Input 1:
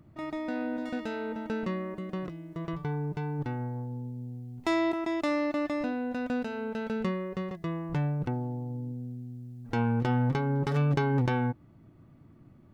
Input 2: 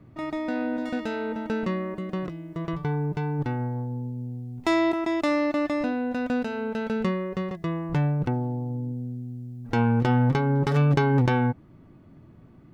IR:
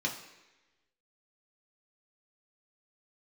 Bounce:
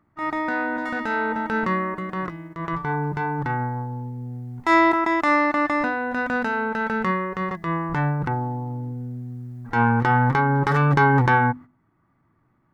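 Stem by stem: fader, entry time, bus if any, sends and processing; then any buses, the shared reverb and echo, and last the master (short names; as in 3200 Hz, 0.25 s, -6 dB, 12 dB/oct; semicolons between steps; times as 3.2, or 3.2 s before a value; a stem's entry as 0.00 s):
+2.0 dB, 0.00 s, no send, band shelf 1300 Hz +14.5 dB
-3.0 dB, 0.00 s, no send, tremolo 0.64 Hz, depth 38%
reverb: off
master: gate -37 dBFS, range -14 dB; notches 50/100/150/200/250 Hz; transient shaper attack -7 dB, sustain -1 dB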